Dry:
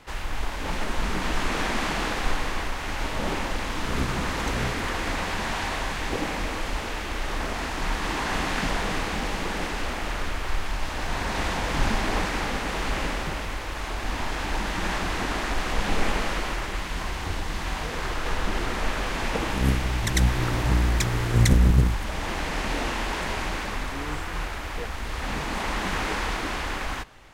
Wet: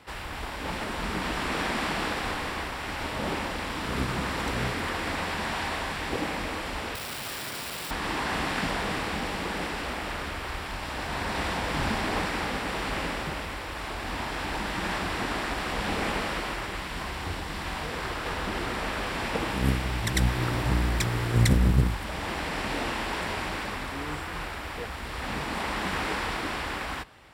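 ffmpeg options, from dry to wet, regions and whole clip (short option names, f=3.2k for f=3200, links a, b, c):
-filter_complex "[0:a]asettb=1/sr,asplit=3[a][b][c];[a]atrim=end=6.954[d];[b]atrim=start=6.95:end=7.91,asetpts=PTS-STARTPTS,afade=t=in:d=0.004:c=qsin,afade=t=out:st=0.956:d=0.004:c=qsin,lowpass=f=3.4k:p=1,bandreject=f=910:w=7.3,aeval=exprs='(mod(28.2*val(0)+1,2)-1)/28.2':c=same[e];[c]atrim=start=7.906[f];[d][e]acrossfade=d=0.004:c1=hsin:c2=qsin[g];[g][f]acrossfade=d=0.004:c1=qsin:c2=hsin,highpass=61,bandreject=f=6.4k:w=5.7,volume=-1.5dB"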